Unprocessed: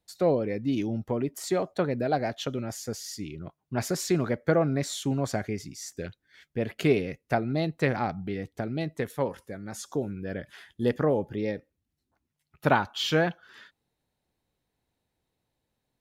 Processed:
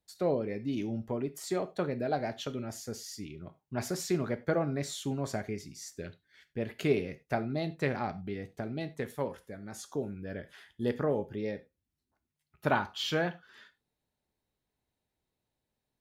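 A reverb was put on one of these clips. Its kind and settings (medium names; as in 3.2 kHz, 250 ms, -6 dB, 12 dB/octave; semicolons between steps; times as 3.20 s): gated-style reverb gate 120 ms falling, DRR 10 dB; trim -5.5 dB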